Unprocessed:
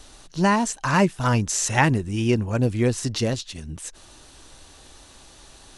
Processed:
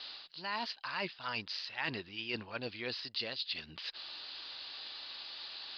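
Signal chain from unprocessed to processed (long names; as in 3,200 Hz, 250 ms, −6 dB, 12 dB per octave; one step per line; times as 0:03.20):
Chebyshev low-pass filter 4,900 Hz, order 8
first difference
reversed playback
downward compressor 5 to 1, threshold −51 dBFS, peak gain reduction 21 dB
reversed playback
level +14.5 dB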